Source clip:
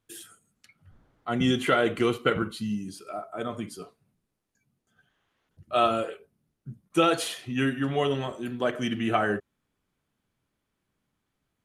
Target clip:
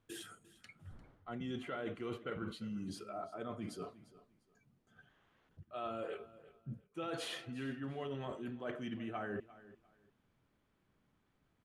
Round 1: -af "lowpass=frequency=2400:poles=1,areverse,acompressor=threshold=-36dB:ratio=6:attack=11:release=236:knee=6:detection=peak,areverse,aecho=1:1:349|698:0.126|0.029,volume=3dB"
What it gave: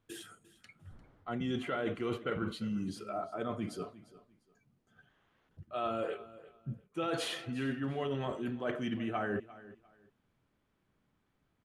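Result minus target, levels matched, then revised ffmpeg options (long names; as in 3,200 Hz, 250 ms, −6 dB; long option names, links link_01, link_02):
downward compressor: peak gain reduction −6.5 dB
-af "lowpass=frequency=2400:poles=1,areverse,acompressor=threshold=-44dB:ratio=6:attack=11:release=236:knee=6:detection=peak,areverse,aecho=1:1:349|698:0.126|0.029,volume=3dB"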